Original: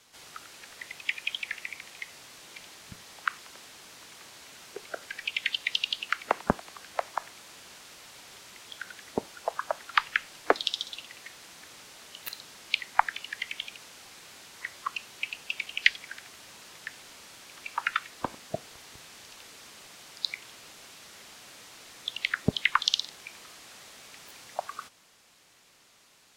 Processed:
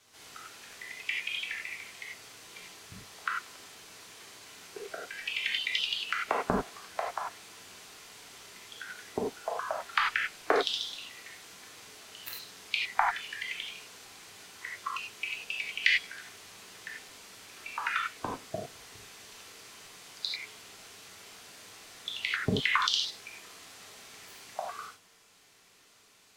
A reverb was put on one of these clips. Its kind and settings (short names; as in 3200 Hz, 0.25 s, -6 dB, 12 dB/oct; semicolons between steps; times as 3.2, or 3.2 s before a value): non-linear reverb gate 0.12 s flat, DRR -3 dB; gain -5.5 dB